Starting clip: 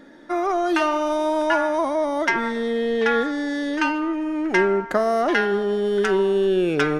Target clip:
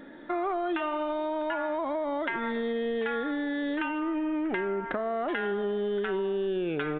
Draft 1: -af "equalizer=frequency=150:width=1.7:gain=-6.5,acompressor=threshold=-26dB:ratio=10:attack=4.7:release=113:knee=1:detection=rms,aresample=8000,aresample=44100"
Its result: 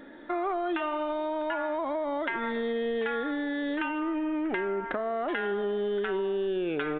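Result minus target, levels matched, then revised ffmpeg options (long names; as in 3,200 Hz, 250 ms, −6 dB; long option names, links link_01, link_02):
125 Hz band −3.5 dB
-af "acompressor=threshold=-26dB:ratio=10:attack=4.7:release=113:knee=1:detection=rms,aresample=8000,aresample=44100"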